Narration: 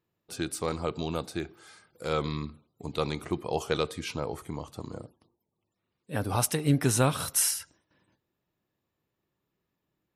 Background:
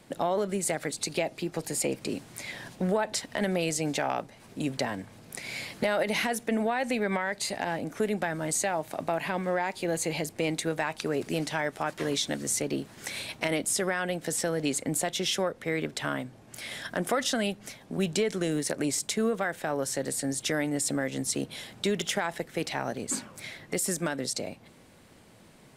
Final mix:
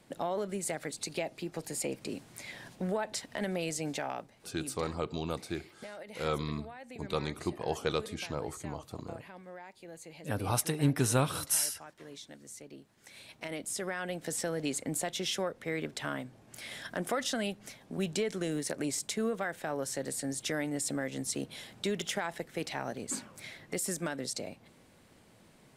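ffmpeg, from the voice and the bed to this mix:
-filter_complex "[0:a]adelay=4150,volume=0.668[s0];[1:a]volume=2.51,afade=t=out:st=3.88:d=0.95:silence=0.223872,afade=t=in:st=13.03:d=1.25:silence=0.199526[s1];[s0][s1]amix=inputs=2:normalize=0"

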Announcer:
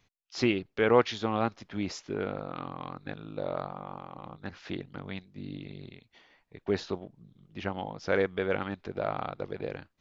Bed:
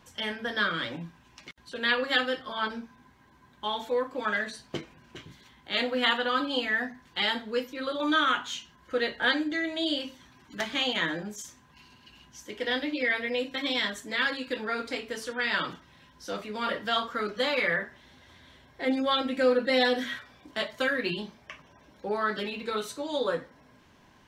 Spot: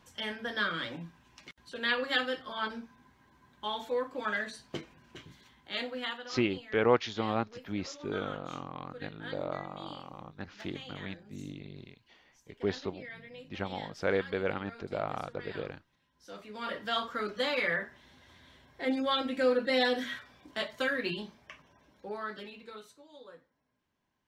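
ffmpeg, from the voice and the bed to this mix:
-filter_complex "[0:a]adelay=5950,volume=0.75[s0];[1:a]volume=3.76,afade=t=out:st=5.43:d=0.89:silence=0.177828,afade=t=in:st=16.09:d=0.95:silence=0.16788,afade=t=out:st=21.08:d=1.98:silence=0.105925[s1];[s0][s1]amix=inputs=2:normalize=0"

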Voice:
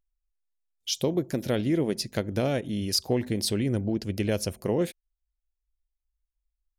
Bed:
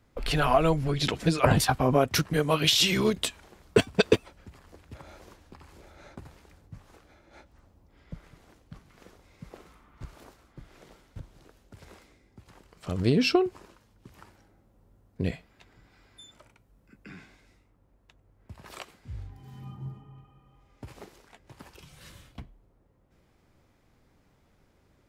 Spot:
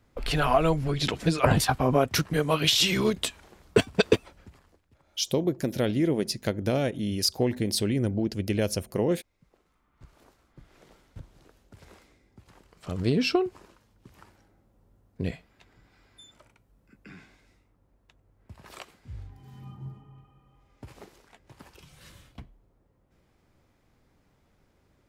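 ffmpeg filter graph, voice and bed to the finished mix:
-filter_complex "[0:a]adelay=4300,volume=1.06[s0];[1:a]volume=6.31,afade=t=out:st=4.39:d=0.42:silence=0.133352,afade=t=in:st=9.64:d=1.46:silence=0.158489[s1];[s0][s1]amix=inputs=2:normalize=0"

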